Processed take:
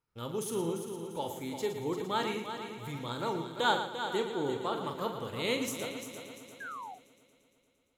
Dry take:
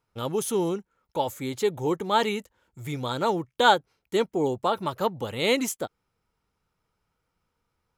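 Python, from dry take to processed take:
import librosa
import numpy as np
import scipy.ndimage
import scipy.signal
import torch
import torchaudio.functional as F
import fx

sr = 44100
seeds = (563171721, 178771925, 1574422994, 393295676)

y = fx.echo_heads(x, sr, ms=115, heads='first and third', feedback_pct=60, wet_db=-9.5)
y = fx.spec_paint(y, sr, seeds[0], shape='fall', start_s=6.6, length_s=0.35, low_hz=700.0, high_hz=1700.0, level_db=-33.0)
y = fx.peak_eq(y, sr, hz=690.0, db=-4.5, octaves=0.64)
y = fx.doubler(y, sr, ms=42.0, db=-8.0)
y = F.gain(torch.from_numpy(y), -8.5).numpy()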